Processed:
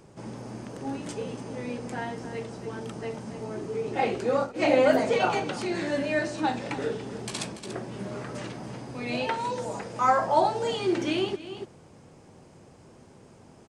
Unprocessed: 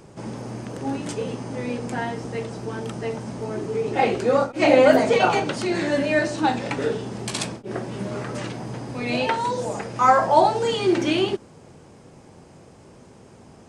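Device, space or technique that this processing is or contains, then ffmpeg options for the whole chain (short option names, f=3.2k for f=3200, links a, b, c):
ducked delay: -filter_complex "[0:a]asplit=3[a][b][c];[b]adelay=287,volume=-4.5dB[d];[c]apad=whole_len=615946[e];[d][e]sidechaincompress=threshold=-35dB:ratio=5:attack=11:release=285[f];[a][f]amix=inputs=2:normalize=0,volume=-6dB"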